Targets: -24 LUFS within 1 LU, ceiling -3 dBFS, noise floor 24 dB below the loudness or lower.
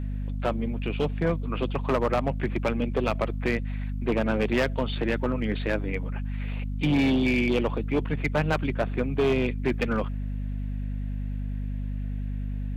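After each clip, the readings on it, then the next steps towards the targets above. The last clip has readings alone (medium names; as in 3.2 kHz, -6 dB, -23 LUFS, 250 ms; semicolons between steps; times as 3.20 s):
clipped samples 1.9%; clipping level -18.0 dBFS; hum 50 Hz; highest harmonic 250 Hz; hum level -28 dBFS; loudness -27.5 LUFS; peak level -18.0 dBFS; loudness target -24.0 LUFS
-> clip repair -18 dBFS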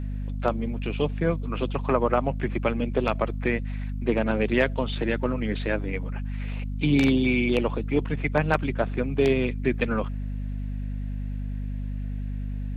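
clipped samples 0.0%; hum 50 Hz; highest harmonic 250 Hz; hum level -28 dBFS
-> hum notches 50/100/150/200/250 Hz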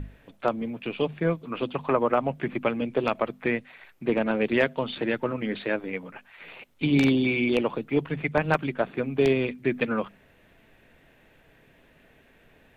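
hum not found; loudness -26.5 LUFS; peak level -8.5 dBFS; loudness target -24.0 LUFS
-> trim +2.5 dB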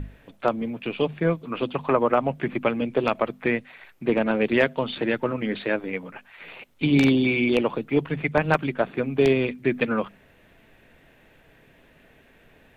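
loudness -24.0 LUFS; peak level -6.0 dBFS; noise floor -57 dBFS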